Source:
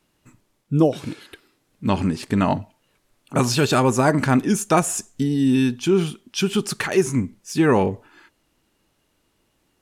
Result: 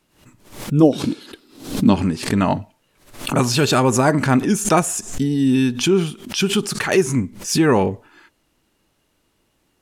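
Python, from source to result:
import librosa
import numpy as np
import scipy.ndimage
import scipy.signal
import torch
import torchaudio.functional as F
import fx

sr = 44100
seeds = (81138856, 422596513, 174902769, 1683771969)

y = fx.graphic_eq_10(x, sr, hz=(125, 250, 2000, 4000), db=(-3, 10, -6, 5), at=(0.82, 1.93), fade=0.02)
y = fx.pre_swell(y, sr, db_per_s=110.0)
y = y * 10.0 ** (1.5 / 20.0)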